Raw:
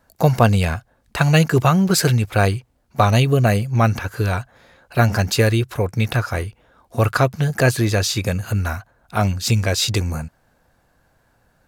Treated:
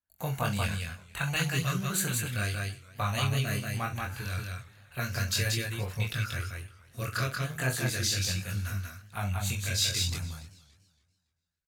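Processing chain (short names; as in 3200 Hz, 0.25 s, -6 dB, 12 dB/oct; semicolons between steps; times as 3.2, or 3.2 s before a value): passive tone stack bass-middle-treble 5-5-5; gate with hold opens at -60 dBFS; LFO notch square 1.1 Hz 850–5100 Hz; chorus voices 2, 0.34 Hz, delay 22 ms, depth 2.1 ms; on a send: loudspeakers at several distances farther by 15 m -10 dB, 63 m -3 dB; on the sum: warbling echo 0.284 s, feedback 32%, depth 155 cents, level -20 dB; gain +2.5 dB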